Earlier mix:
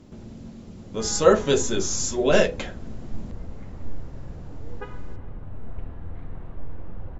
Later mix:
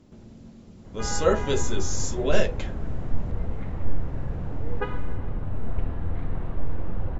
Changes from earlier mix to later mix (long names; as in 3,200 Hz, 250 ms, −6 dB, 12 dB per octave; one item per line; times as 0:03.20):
speech −5.5 dB
background +7.5 dB